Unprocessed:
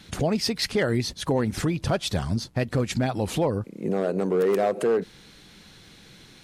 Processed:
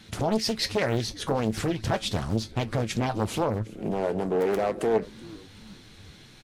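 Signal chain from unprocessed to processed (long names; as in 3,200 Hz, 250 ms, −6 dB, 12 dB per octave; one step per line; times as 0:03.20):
tuned comb filter 110 Hz, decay 0.16 s, harmonics all, mix 70%
on a send: echo with shifted repeats 377 ms, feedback 62%, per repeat −120 Hz, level −21 dB
on the sum: highs frequency-modulated by the lows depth 0.95 ms
level +3.5 dB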